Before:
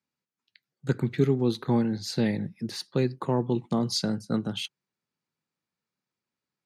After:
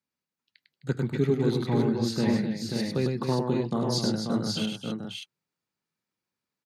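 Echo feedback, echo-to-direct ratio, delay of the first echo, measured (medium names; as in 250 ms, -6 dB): no regular repeats, 0.5 dB, 101 ms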